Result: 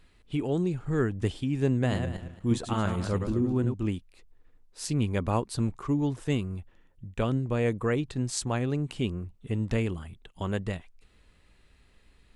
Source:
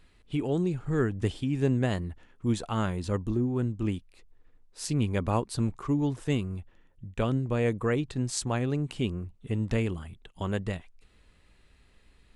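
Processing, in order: 1.72–3.74 s: backward echo that repeats 113 ms, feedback 43%, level -6 dB

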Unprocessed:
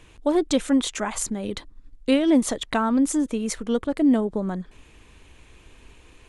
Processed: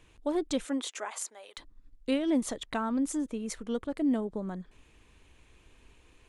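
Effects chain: 0.64–1.57 s: high-pass 240 Hz -> 740 Hz 24 dB/octave; 2.18–3.50 s: tape noise reduction on one side only decoder only; trim -9 dB

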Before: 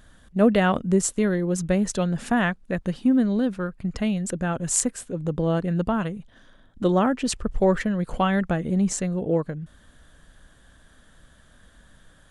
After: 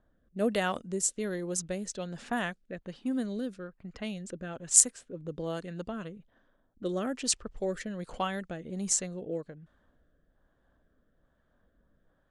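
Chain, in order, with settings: rotary cabinet horn 1.2 Hz; level-controlled noise filter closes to 860 Hz, open at -19 dBFS; tone controls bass -8 dB, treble +13 dB; trim -7.5 dB

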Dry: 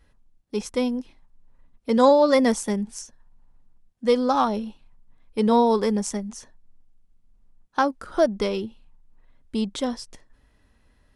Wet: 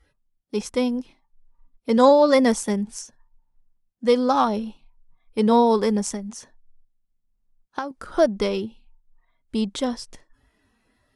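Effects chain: spectral noise reduction 15 dB; 6.13–7.91 s: compression 12:1, threshold -27 dBFS, peak gain reduction 12 dB; trim +1.5 dB

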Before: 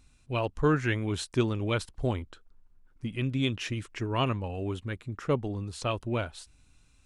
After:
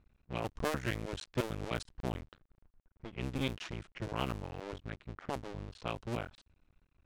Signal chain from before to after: cycle switcher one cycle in 2, muted; short-mantissa float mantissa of 4-bit; level-controlled noise filter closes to 2 kHz, open at -25.5 dBFS; trim -5.5 dB

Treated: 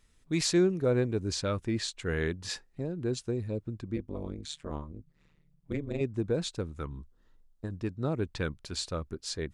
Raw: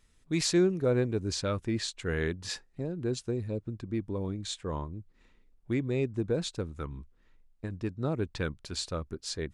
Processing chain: 3.96–6.01 s: AM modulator 150 Hz, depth 100%; 6.88–7.74 s: peaking EQ 2.3 kHz -15 dB 0.39 oct

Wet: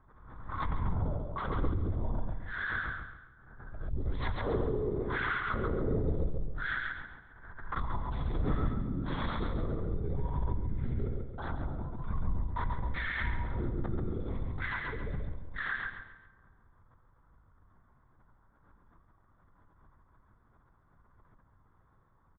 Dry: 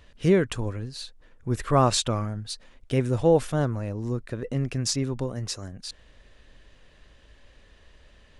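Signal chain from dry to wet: gate -43 dBFS, range -16 dB; graphic EQ with 31 bands 125 Hz -8 dB, 250 Hz -7 dB, 2.5 kHz +6 dB; wide varispeed 0.375×; compression 5:1, threshold -28 dBFS, peak gain reduction 12 dB; peak limiter -24.5 dBFS, peak gain reduction 7 dB; static phaser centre 730 Hz, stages 6; LPC vocoder at 8 kHz whisper; feedback delay 137 ms, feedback 34%, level -3 dB; plate-style reverb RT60 1.4 s, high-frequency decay 0.6×, DRR 13 dB; swell ahead of each attack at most 51 dB/s; trim +2.5 dB

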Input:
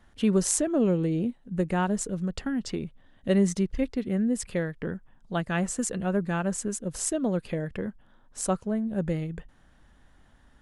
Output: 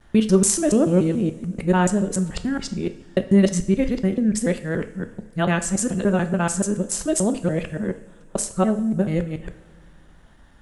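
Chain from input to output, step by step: time reversed locally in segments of 144 ms; two-slope reverb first 0.5 s, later 2.6 s, from -18 dB, DRR 8.5 dB; trim +6 dB

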